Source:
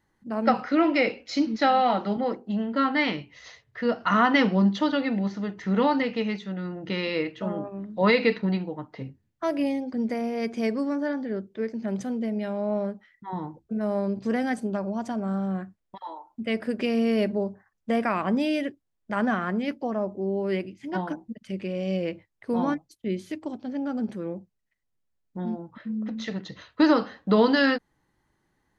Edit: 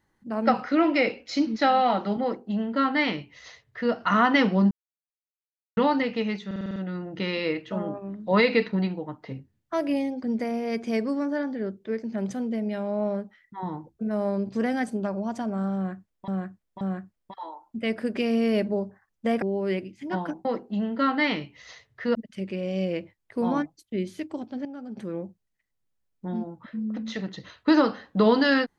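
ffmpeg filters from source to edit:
-filter_complex "[0:a]asplit=16[s0][s1][s2][s3][s4][s5][s6][s7][s8][s9][s10][s11][s12][s13][s14][s15];[s0]atrim=end=4.71,asetpts=PTS-STARTPTS,afade=t=out:st=4.706:d=0.004:c=hsin[s16];[s1]atrim=start=4.71:end=5.77,asetpts=PTS-STARTPTS,volume=0[s17];[s2]atrim=start=5.77:end=6.512,asetpts=PTS-STARTPTS,afade=t=in:d=0.004:c=hsin[s18];[s3]atrim=start=6.458:end=6.512[s19];[s4]atrim=start=6.458:end=6.512[s20];[s5]atrim=start=6.458:end=6.512[s21];[s6]atrim=start=6.458:end=6.512[s22];[s7]atrim=start=6.458:end=6.512[s23];[s8]atrim=start=6.458:end=15.982[s24];[s9]atrim=start=15.448:end=15.982[s25];[s10]atrim=start=15.448:end=18.062[s26];[s11]atrim=start=20.238:end=21.272[s27];[s12]atrim=start=2.218:end=3.922[s28];[s13]atrim=start=21.268:end=23.772[s29];[s14]atrim=start=23.768:end=24.092,asetpts=PTS-STARTPTS,volume=0.335[s30];[s15]atrim=start=24.088[s31];[s16][s17][s18]concat=n=3:v=0:a=1[s32];[s32][s19]acrossfade=d=0.004:c1=hsin:c2=hsin[s33];[s33][s20]acrossfade=d=0.004:c1=hsin:c2=hsin[s34];[s34][s21]acrossfade=d=0.004:c1=hsin:c2=hsin[s35];[s35][s22]acrossfade=d=0.004:c1=hsin:c2=hsin[s36];[s36][s23]acrossfade=d=0.004:c1=hsin:c2=hsin[s37];[s37][s24]acrossfade=d=0.004:c1=hsin:c2=hsin[s38];[s38][s25]acrossfade=d=0.004:c1=hsin:c2=hsin[s39];[s39][s26]acrossfade=d=0.004:c1=hsin:c2=hsin[s40];[s40][s27]acrossfade=d=0.004:c1=hsin:c2=hsin[s41];[s41][s28]acrossfade=d=0.004:c1=hsin:c2=hsin[s42];[s42][s29]acrossfade=d=0.004:c1=hsin:c2=hsin[s43];[s43][s30]acrossfade=d=0.004:c1=hsin:c2=hsin[s44];[s44][s31]acrossfade=d=0.004:c1=hsin:c2=hsin"

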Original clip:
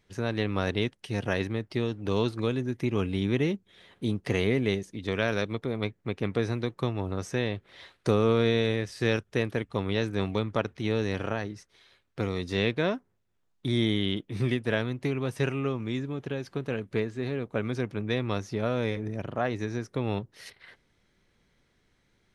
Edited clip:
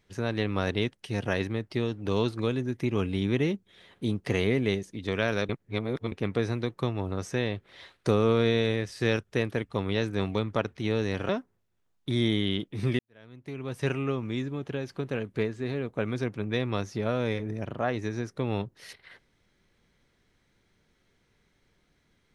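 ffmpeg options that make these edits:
-filter_complex "[0:a]asplit=5[s0][s1][s2][s3][s4];[s0]atrim=end=5.492[s5];[s1]atrim=start=5.488:end=6.122,asetpts=PTS-STARTPTS,areverse[s6];[s2]atrim=start=6.118:end=11.292[s7];[s3]atrim=start=12.858:end=14.56,asetpts=PTS-STARTPTS,afade=t=out:st=1.698:d=0.004:c=hsin[s8];[s4]atrim=start=14.56,asetpts=PTS-STARTPTS,afade=t=in:d=0.9:c=qua[s9];[s5][s6]acrossfade=d=0.004:c1=hsin:c2=hsin[s10];[s10][s7]acrossfade=d=0.004:c1=hsin:c2=hsin[s11];[s8][s9]concat=n=2:v=0:a=1[s12];[s11][s12]acrossfade=d=0.004:c1=hsin:c2=hsin"

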